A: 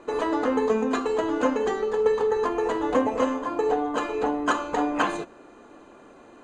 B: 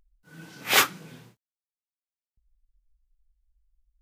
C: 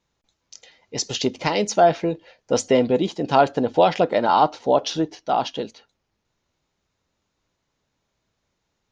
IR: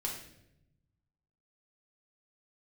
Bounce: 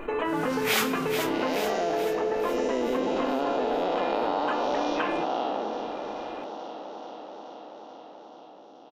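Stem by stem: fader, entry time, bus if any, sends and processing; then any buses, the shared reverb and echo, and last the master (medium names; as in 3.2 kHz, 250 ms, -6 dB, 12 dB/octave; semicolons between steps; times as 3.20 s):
-7.0 dB, 0.00 s, bus A, no send, no echo send, resonant high shelf 3.7 kHz -11.5 dB, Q 3
+1.5 dB, 0.00 s, no bus, send -10.5 dB, echo send -9 dB, compression, threshold -27 dBFS, peak gain reduction 12.5 dB
-2.5 dB, 0.00 s, bus A, no send, echo send -13.5 dB, spectral blur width 482 ms; high-pass 230 Hz 24 dB/octave; level-controlled noise filter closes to 310 Hz, open at -22.5 dBFS
bus A: 0.0 dB, compression, threshold -27 dBFS, peak gain reduction 7 dB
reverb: on, RT60 0.80 s, pre-delay 5 ms
echo: feedback delay 432 ms, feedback 58%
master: level flattener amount 50%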